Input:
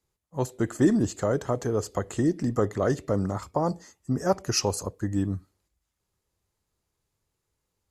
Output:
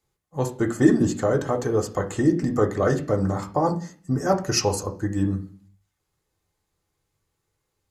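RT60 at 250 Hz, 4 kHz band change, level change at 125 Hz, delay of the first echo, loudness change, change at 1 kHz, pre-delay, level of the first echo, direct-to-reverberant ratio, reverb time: 0.65 s, +2.5 dB, +3.5 dB, none, +3.5 dB, +4.5 dB, 3 ms, none, 1.0 dB, 0.45 s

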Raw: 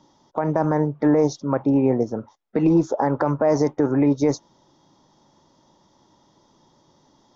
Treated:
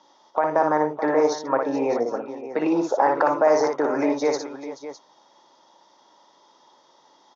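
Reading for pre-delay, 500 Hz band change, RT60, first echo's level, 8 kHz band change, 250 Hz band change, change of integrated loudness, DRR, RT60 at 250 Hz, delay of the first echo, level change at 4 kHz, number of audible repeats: none, +1.0 dB, none, -4.5 dB, n/a, -6.0 dB, -1.5 dB, none, none, 59 ms, +4.0 dB, 3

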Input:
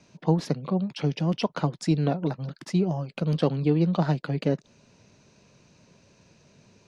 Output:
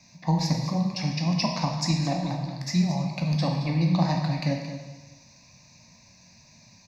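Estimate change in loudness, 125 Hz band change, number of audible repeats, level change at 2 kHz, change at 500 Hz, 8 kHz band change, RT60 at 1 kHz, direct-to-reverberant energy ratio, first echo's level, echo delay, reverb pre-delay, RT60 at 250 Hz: +0.5 dB, +1.0 dB, 1, +3.0 dB, -6.0 dB, n/a, 1.2 s, 0.5 dB, -12.0 dB, 0.223 s, 6 ms, 1.2 s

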